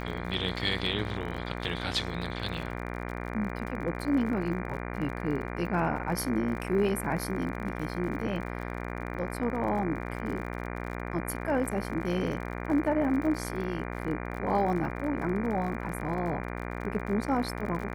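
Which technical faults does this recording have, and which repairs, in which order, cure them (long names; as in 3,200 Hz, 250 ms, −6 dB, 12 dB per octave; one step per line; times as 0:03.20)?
mains buzz 60 Hz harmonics 40 −36 dBFS
surface crackle 51 per second −37 dBFS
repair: click removal
hum removal 60 Hz, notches 40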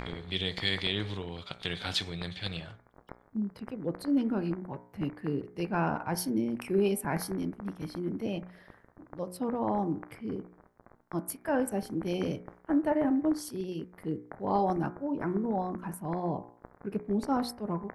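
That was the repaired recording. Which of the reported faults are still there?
none of them is left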